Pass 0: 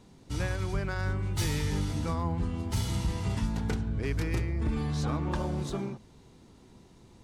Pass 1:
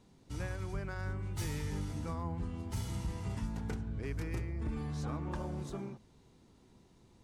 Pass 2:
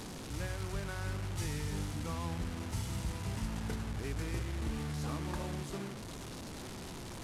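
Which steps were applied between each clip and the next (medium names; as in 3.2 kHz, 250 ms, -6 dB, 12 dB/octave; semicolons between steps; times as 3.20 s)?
dynamic bell 3.8 kHz, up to -5 dB, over -55 dBFS, Q 1.4; trim -7.5 dB
one-bit delta coder 64 kbps, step -38.5 dBFS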